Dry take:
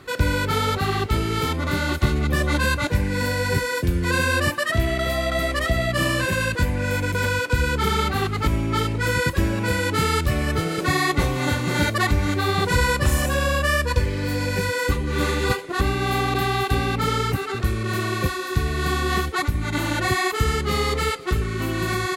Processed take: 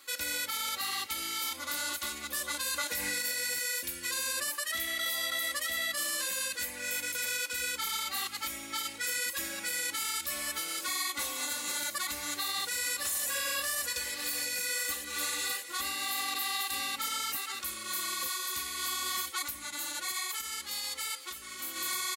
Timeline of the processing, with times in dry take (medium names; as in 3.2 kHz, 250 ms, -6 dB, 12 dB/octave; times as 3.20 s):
2.61–3.22 s: gain +8.5 dB
12.23–13.27 s: echo throw 590 ms, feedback 70%, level -8.5 dB
19.66–21.76 s: compression, threshold -24 dBFS
whole clip: differentiator; comb 3.6 ms, depth 95%; peak limiter -24 dBFS; trim +1 dB